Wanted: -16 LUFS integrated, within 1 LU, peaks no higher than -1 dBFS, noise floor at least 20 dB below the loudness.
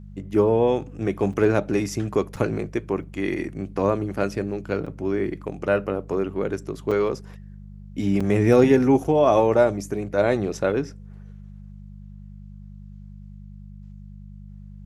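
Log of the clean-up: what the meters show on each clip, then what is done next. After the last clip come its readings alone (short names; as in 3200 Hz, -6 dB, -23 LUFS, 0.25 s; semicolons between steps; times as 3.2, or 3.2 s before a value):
dropouts 7; longest dropout 5.6 ms; hum 50 Hz; harmonics up to 200 Hz; hum level -38 dBFS; loudness -23.0 LUFS; peak -5.0 dBFS; loudness target -16.0 LUFS
-> interpolate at 1.33/2.36/3.03/4.86/6.91/8.2/9.04, 5.6 ms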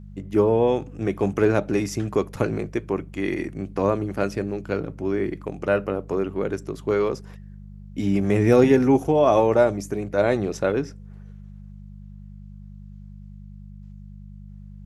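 dropouts 0; hum 50 Hz; harmonics up to 200 Hz; hum level -38 dBFS
-> de-hum 50 Hz, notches 4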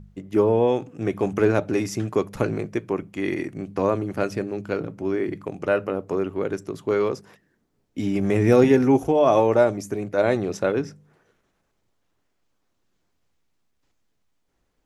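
hum none; loudness -23.0 LUFS; peak -4.5 dBFS; loudness target -16.0 LUFS
-> gain +7 dB; limiter -1 dBFS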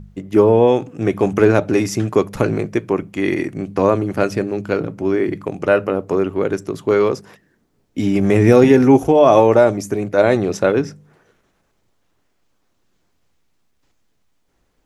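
loudness -16.5 LUFS; peak -1.0 dBFS; noise floor -65 dBFS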